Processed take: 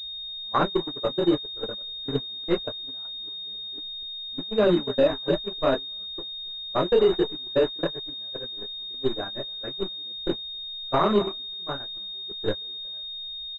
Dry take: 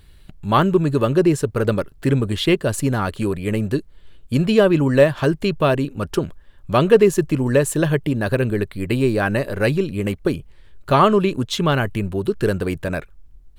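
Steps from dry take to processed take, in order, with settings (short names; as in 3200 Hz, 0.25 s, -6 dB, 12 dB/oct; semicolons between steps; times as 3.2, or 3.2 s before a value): delta modulation 32 kbps, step -21 dBFS; on a send: echo 0.279 s -13.5 dB; on the sum: chorus voices 6, 0.39 Hz, delay 26 ms, depth 3.6 ms; bell 140 Hz -11 dB 1.5 oct; gate -20 dBFS, range -35 dB; air absorption 350 m; limiter -15.5 dBFS, peak gain reduction 10 dB; pulse-width modulation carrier 3700 Hz; gain +4 dB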